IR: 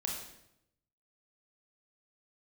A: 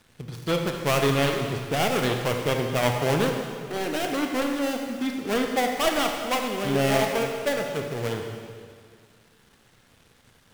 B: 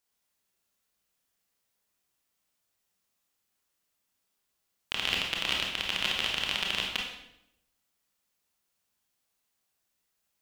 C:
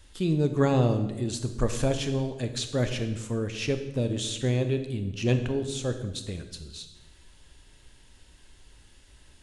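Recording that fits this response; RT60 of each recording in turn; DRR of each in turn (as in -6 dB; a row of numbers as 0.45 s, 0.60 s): B; 2.1 s, 0.80 s, 1.1 s; 2.5 dB, -1.0 dB, 7.5 dB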